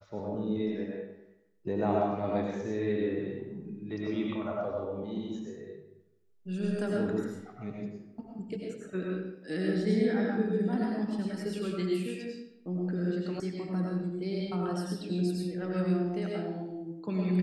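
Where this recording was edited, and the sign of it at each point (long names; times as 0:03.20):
0:13.40: cut off before it has died away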